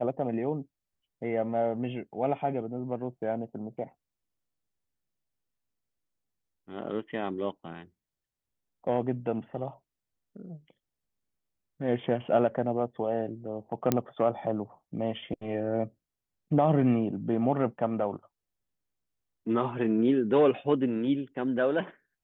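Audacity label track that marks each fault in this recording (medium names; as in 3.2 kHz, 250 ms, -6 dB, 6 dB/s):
13.920000	13.920000	pop -10 dBFS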